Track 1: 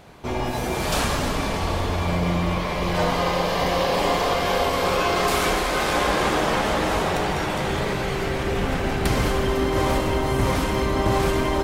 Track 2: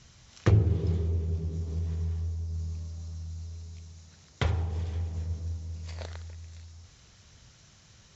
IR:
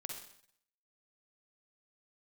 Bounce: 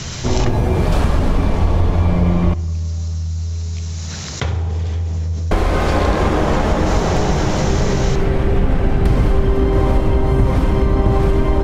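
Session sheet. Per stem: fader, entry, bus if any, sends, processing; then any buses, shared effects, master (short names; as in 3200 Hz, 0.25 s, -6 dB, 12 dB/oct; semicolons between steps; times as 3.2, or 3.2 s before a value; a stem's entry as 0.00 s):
+2.5 dB, 0.00 s, muted 2.54–5.51, send -9 dB, tilt -3 dB/oct
+1.0 dB, 0.00 s, send -6 dB, notches 50/100 Hz; fast leveller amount 70%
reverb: on, RT60 0.65 s, pre-delay 43 ms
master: compressor 2.5:1, threshold -12 dBFS, peak gain reduction 7.5 dB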